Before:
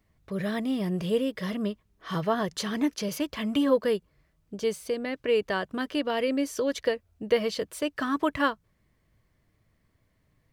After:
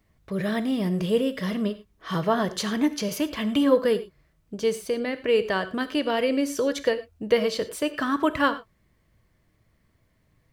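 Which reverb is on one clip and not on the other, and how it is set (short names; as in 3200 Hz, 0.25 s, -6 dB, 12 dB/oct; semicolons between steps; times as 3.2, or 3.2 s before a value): non-linear reverb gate 0.13 s flat, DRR 11.5 dB; gain +3 dB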